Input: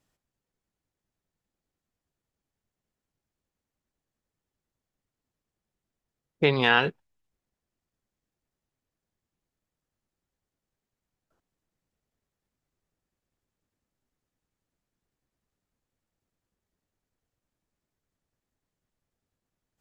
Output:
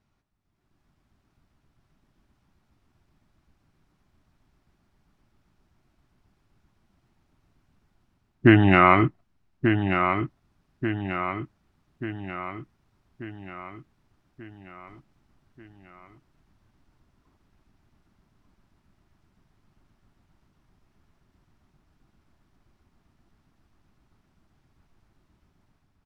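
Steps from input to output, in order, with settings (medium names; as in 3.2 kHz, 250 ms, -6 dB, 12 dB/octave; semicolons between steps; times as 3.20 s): low-pass 1.8 kHz 6 dB/octave; peaking EQ 650 Hz -12 dB 0.44 oct; in parallel at +2 dB: peak limiter -12.5 dBFS, peak gain reduction 3.5 dB; on the sum: level rider gain up to 14.5 dB; tape speed -24%; on a send: feedback delay 1187 ms, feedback 52%, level -7 dB; on the sum: trim -1 dB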